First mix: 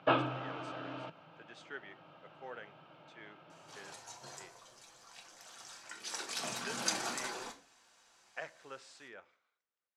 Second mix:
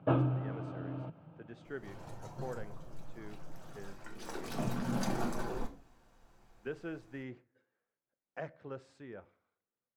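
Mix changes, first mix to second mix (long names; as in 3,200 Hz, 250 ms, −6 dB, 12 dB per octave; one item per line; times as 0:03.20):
first sound −6.5 dB
second sound: entry −1.85 s
master: remove meter weighting curve ITU-R 468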